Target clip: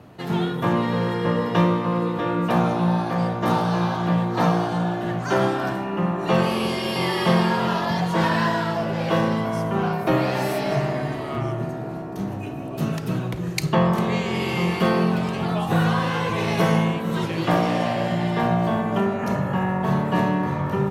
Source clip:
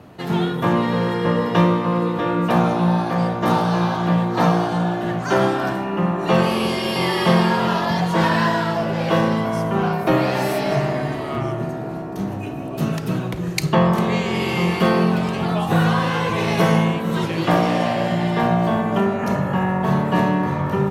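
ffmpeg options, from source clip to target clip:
ffmpeg -i in.wav -af "equalizer=frequency=120:width=6.5:gain=3.5,volume=-3dB" out.wav

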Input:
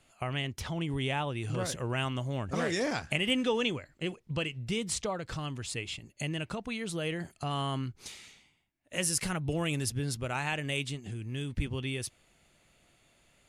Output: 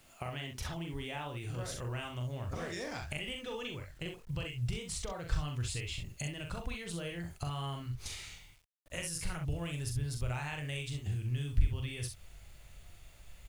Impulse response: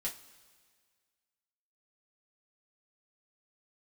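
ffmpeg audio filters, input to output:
-af "acompressor=threshold=-41dB:ratio=5,aecho=1:1:41|65:0.562|0.422,acrusher=bits=10:mix=0:aa=0.000001,asubboost=boost=11.5:cutoff=69,volume=2dB"

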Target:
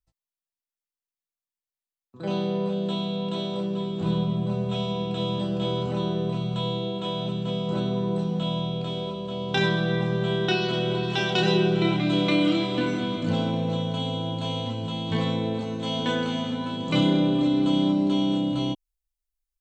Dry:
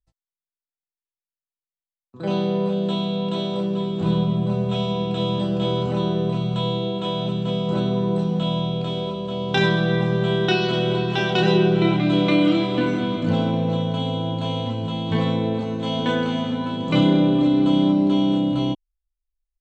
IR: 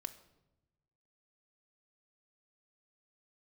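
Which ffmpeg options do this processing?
-af "asetnsamples=nb_out_samples=441:pad=0,asendcmd='11.03 highshelf g 9.5',highshelf=frequency=4000:gain=3.5,volume=-4.5dB"

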